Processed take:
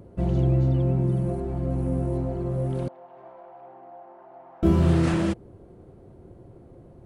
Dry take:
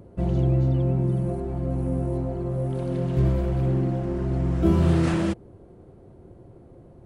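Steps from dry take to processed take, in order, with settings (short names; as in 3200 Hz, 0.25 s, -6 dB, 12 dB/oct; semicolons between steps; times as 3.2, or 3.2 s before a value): 2.88–4.63 ladder band-pass 870 Hz, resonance 65%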